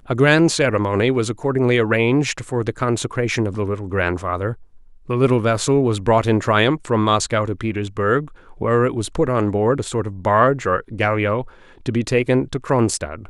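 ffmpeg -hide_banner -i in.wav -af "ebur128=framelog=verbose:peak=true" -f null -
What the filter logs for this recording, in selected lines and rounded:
Integrated loudness:
  I:         -19.1 LUFS
  Threshold: -29.3 LUFS
Loudness range:
  LRA:         2.8 LU
  Threshold: -39.6 LUFS
  LRA low:   -21.2 LUFS
  LRA high:  -18.3 LUFS
True peak:
  Peak:       -1.3 dBFS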